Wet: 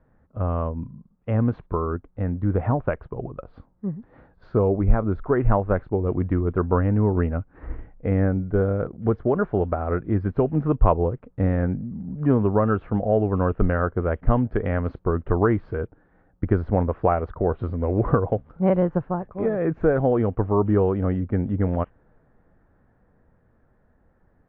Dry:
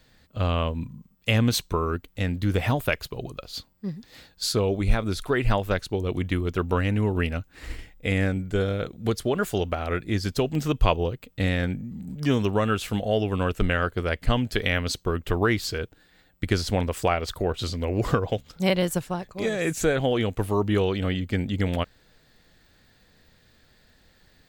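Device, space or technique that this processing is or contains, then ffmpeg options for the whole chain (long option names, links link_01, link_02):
action camera in a waterproof case: -af "lowpass=frequency=1300:width=0.5412,lowpass=frequency=1300:width=1.3066,dynaudnorm=framelen=500:gausssize=11:maxgain=4dB" -ar 16000 -c:a aac -b:a 48k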